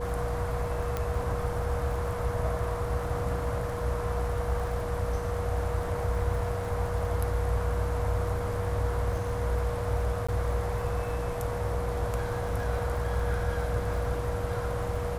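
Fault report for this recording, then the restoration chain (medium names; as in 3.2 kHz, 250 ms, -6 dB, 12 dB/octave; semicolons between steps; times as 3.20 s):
crackle 44 per s -38 dBFS
hum 60 Hz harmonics 3 -35 dBFS
whine 480 Hz -34 dBFS
0.97 s: pop -17 dBFS
10.27–10.29 s: dropout 15 ms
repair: de-click; de-hum 60 Hz, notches 3; band-stop 480 Hz, Q 30; interpolate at 10.27 s, 15 ms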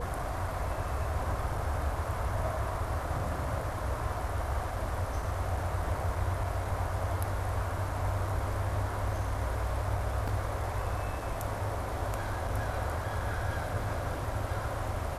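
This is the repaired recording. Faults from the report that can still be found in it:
nothing left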